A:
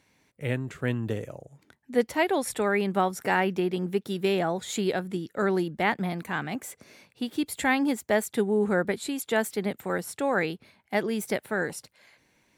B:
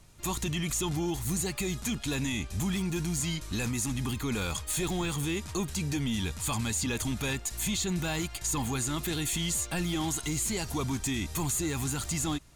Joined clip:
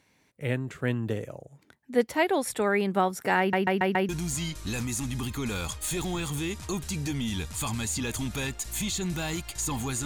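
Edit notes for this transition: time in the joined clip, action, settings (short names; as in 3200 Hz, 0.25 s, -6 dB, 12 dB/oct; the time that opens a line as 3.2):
A
3.39 stutter in place 0.14 s, 5 plays
4.09 switch to B from 2.95 s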